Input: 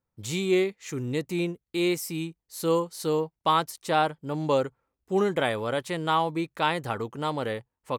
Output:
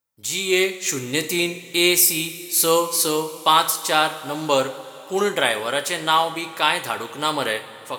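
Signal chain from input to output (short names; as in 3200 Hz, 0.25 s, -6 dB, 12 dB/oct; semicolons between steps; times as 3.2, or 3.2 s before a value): tilt +3.5 dB/oct; AGC gain up to 11 dB; two-slope reverb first 0.42 s, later 4.6 s, from -18 dB, DRR 6.5 dB; gain -1 dB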